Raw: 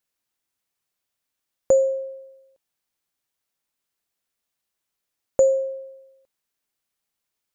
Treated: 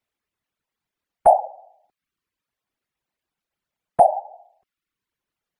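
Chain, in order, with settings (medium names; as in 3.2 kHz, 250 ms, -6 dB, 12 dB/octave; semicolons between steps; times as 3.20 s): wide varispeed 1.35×; tone controls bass +4 dB, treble -12 dB; in parallel at -2 dB: peak limiter -15 dBFS, peak gain reduction 7 dB; on the sum: whisper effect; reverb removal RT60 0.65 s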